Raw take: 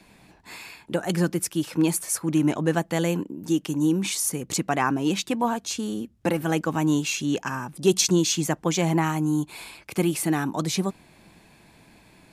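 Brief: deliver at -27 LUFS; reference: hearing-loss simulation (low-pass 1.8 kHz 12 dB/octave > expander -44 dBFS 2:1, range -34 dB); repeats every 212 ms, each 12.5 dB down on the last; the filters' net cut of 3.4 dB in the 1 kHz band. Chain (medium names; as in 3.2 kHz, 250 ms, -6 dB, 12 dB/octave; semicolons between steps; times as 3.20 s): low-pass 1.8 kHz 12 dB/octave; peaking EQ 1 kHz -4 dB; feedback delay 212 ms, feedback 24%, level -12.5 dB; expander -44 dBFS 2:1, range -34 dB; trim -1 dB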